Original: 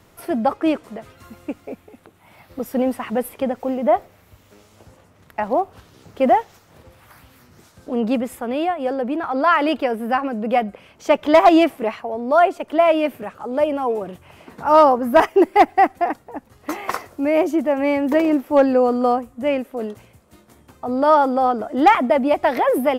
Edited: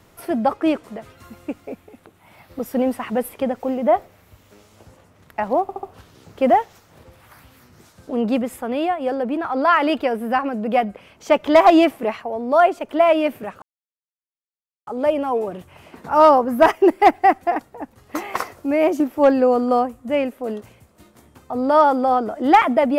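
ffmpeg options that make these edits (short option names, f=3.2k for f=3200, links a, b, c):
-filter_complex "[0:a]asplit=6[a][b][c][d][e][f];[a]atrim=end=5.692[g];[b]atrim=start=5.618:end=5.692[h];[c]atrim=start=5.618:end=5.692[i];[d]atrim=start=5.618:end=13.41,asetpts=PTS-STARTPTS,afade=t=out:st=7.788:d=0.004:c=hsin,apad=pad_dur=1.25[j];[e]atrim=start=13.41:end=17.542,asetpts=PTS-STARTPTS,afade=t=in:d=0.004:c=hsin[k];[f]atrim=start=18.328[l];[g][h]acrossfade=d=0.004:c1=hsin:c2=hsin[m];[m][i]acrossfade=d=0.004:c1=hsin:c2=hsin[n];[j][k]concat=n=2:v=0:a=1[o];[n][o]acrossfade=d=0.004:c1=hsin:c2=hsin[p];[p][l]acrossfade=d=0.004:c1=hsin:c2=hsin"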